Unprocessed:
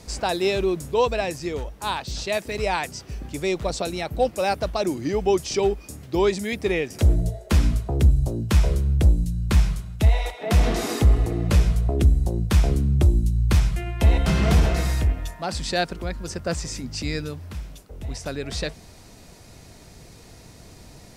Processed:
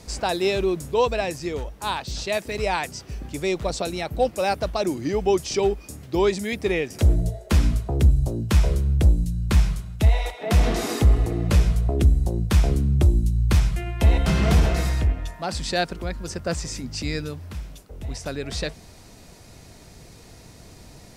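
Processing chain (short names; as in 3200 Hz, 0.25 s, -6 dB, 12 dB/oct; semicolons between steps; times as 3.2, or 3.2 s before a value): 14.89–15.34 high shelf 8900 Hz -11 dB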